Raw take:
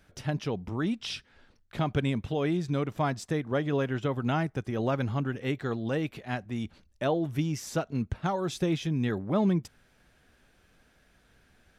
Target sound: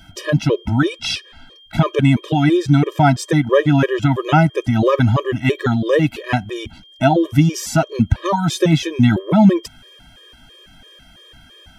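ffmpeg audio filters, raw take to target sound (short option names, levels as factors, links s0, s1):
-af "aeval=exprs='val(0)+0.00126*sin(2*PI*3200*n/s)':c=same,alimiter=level_in=7.5:limit=0.891:release=50:level=0:latency=1,afftfilt=real='re*gt(sin(2*PI*3*pts/sr)*(1-2*mod(floor(b*sr/1024/320),2)),0)':imag='im*gt(sin(2*PI*3*pts/sr)*(1-2*mod(floor(b*sr/1024/320),2)),0)':win_size=1024:overlap=0.75"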